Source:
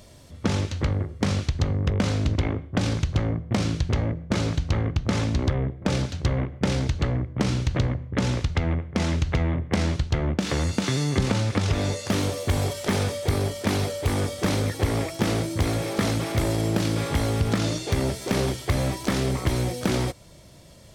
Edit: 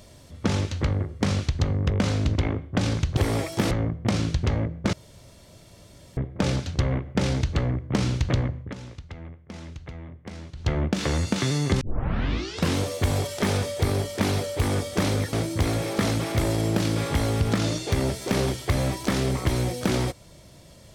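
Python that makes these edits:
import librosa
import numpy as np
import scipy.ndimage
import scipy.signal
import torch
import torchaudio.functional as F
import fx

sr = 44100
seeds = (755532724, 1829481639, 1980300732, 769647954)

y = fx.edit(x, sr, fx.room_tone_fill(start_s=4.39, length_s=1.24),
    fx.fade_down_up(start_s=8.06, length_s=2.09, db=-15.5, fade_s=0.14),
    fx.tape_start(start_s=11.27, length_s=0.99),
    fx.move(start_s=14.79, length_s=0.54, to_s=3.17), tone=tone)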